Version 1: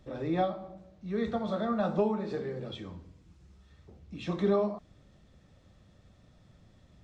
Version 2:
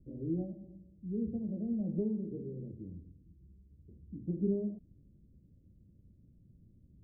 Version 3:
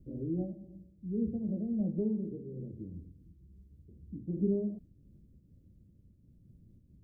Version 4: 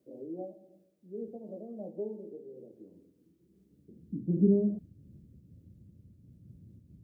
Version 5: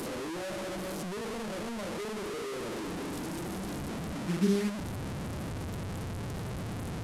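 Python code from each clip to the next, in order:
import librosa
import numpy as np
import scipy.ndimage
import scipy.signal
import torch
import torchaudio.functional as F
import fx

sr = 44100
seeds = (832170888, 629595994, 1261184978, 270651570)

y1 = scipy.signal.sosfilt(scipy.signal.cheby2(4, 60, 1200.0, 'lowpass', fs=sr, output='sos'), x)
y1 = F.gain(torch.from_numpy(y1), -1.5).numpy()
y2 = fx.am_noise(y1, sr, seeds[0], hz=5.7, depth_pct=60)
y2 = F.gain(torch.from_numpy(y2), 4.5).numpy()
y3 = fx.filter_sweep_highpass(y2, sr, from_hz=610.0, to_hz=92.0, start_s=2.83, end_s=4.81, q=1.2)
y3 = F.gain(torch.from_numpy(y3), 4.5).numpy()
y4 = fx.delta_mod(y3, sr, bps=64000, step_db=-27.5)
y4 = F.gain(torch.from_numpy(y4), -3.0).numpy()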